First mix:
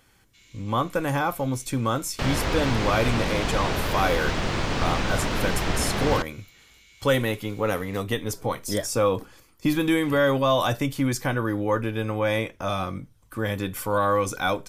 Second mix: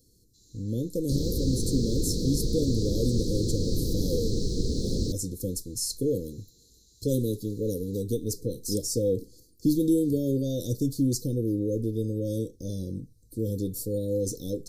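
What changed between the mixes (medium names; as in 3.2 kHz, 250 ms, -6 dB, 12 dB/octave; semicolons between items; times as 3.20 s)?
second sound: entry -1.10 s; master: add Chebyshev band-stop 490–4100 Hz, order 5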